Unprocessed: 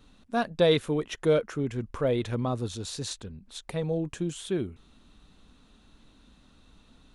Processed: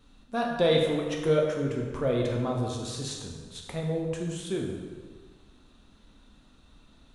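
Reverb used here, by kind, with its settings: plate-style reverb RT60 1.6 s, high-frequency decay 0.7×, DRR -0.5 dB; trim -3 dB

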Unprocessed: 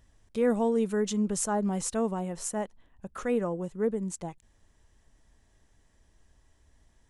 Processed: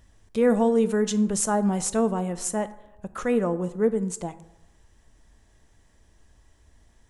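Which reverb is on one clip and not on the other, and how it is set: plate-style reverb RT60 0.89 s, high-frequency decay 0.5×, DRR 12.5 dB; trim +5 dB

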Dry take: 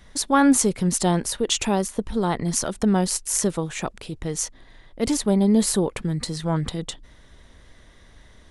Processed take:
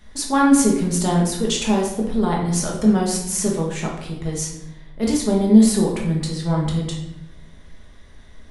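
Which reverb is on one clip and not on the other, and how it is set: simulated room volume 270 m³, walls mixed, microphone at 1.4 m; trim -3 dB

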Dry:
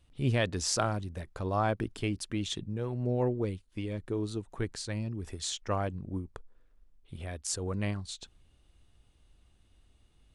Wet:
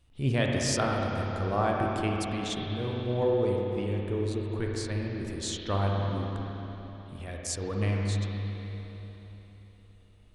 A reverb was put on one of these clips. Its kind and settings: spring tank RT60 3.8 s, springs 30/50/58 ms, chirp 75 ms, DRR -1.5 dB

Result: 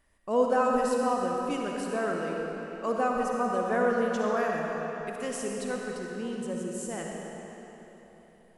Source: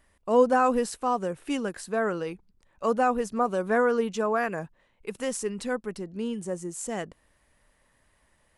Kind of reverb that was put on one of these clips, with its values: algorithmic reverb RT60 3.7 s, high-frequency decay 0.85×, pre-delay 20 ms, DRR -1 dB; trim -5 dB

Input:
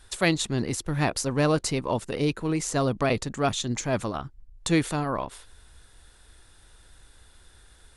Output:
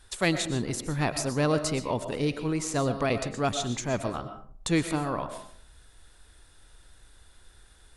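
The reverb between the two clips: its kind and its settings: algorithmic reverb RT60 0.53 s, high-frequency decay 0.45×, pre-delay 80 ms, DRR 9 dB; trim -2.5 dB

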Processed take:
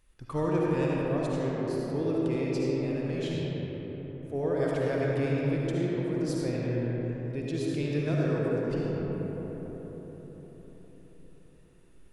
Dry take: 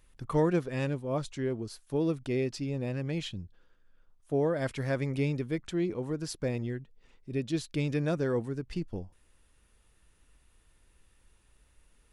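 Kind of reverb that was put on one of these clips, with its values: algorithmic reverb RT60 5 s, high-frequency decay 0.35×, pre-delay 30 ms, DRR -5 dB; trim -4.5 dB

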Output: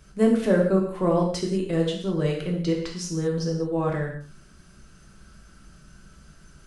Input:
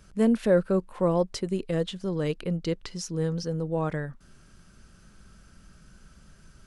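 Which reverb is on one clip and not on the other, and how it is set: gated-style reverb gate 230 ms falling, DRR -1 dB

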